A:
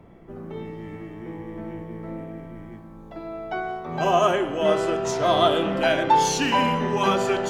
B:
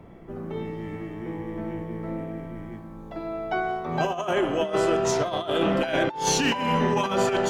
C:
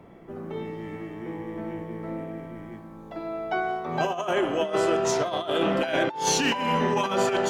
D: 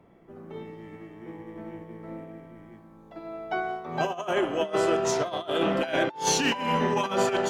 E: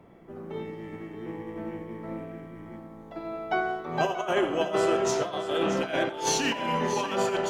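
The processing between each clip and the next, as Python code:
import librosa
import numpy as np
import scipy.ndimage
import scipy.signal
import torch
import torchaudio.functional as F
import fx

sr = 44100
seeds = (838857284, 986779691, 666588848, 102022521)

y1 = fx.over_compress(x, sr, threshold_db=-23.0, ratio=-0.5)
y2 = fx.low_shelf(y1, sr, hz=110.0, db=-11.0)
y3 = fx.upward_expand(y2, sr, threshold_db=-37.0, expansion=1.5)
y4 = fx.rider(y3, sr, range_db=10, speed_s=2.0)
y4 = fx.echo_multitap(y4, sr, ms=(87, 630), db=(-14.0, -11.5))
y4 = F.gain(torch.from_numpy(y4), -1.5).numpy()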